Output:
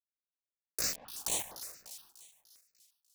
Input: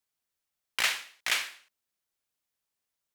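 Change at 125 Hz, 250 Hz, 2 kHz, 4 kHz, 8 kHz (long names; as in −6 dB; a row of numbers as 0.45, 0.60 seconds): can't be measured, +6.0 dB, −17.5 dB, −9.5 dB, +2.5 dB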